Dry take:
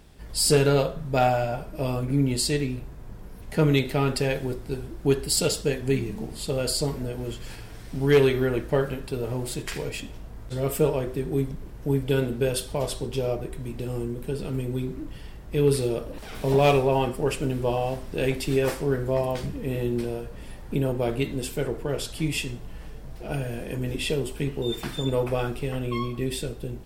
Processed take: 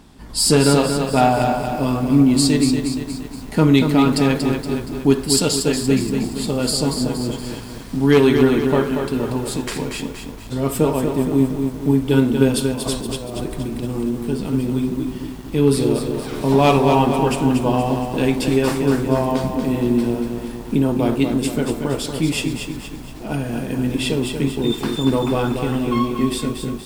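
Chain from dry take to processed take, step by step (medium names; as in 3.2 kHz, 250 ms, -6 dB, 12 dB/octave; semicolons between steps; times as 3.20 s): ten-band graphic EQ 250 Hz +12 dB, 500 Hz -3 dB, 1 kHz +9 dB, 4 kHz +4 dB, 8 kHz +4 dB; 12.73–13.98 s: compressor with a negative ratio -27 dBFS, ratio -0.5; bit-crushed delay 235 ms, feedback 55%, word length 7-bit, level -6 dB; trim +1 dB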